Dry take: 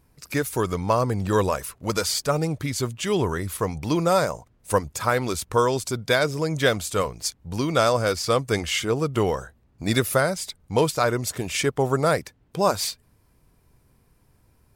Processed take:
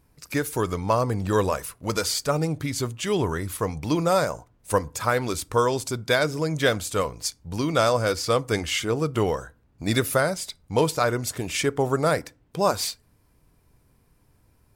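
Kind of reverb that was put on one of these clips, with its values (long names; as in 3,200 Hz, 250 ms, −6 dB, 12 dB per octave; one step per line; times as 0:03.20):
feedback delay network reverb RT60 0.36 s, low-frequency decay 1.2×, high-frequency decay 0.6×, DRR 17.5 dB
level −1 dB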